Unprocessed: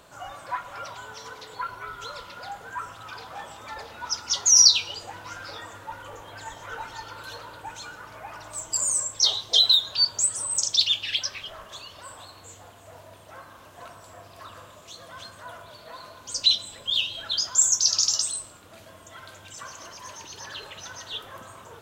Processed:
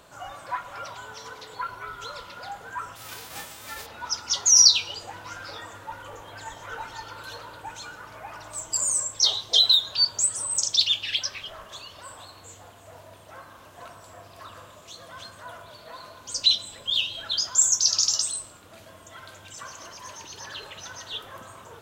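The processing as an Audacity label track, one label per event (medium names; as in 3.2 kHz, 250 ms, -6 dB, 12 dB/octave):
2.950000	3.850000	formants flattened exponent 0.3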